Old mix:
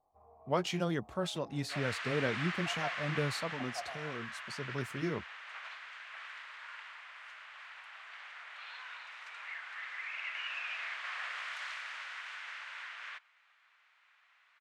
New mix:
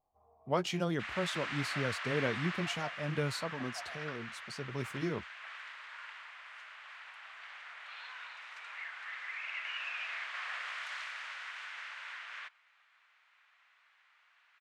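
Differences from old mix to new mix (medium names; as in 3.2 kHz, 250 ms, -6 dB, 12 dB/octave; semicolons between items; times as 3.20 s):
first sound -6.0 dB; second sound: entry -0.70 s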